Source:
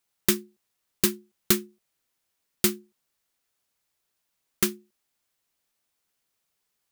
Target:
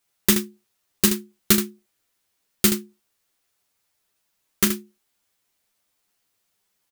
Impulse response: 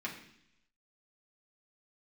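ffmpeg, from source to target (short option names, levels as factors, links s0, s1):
-af "aecho=1:1:10|39|77:0.708|0.282|0.398,volume=1.33"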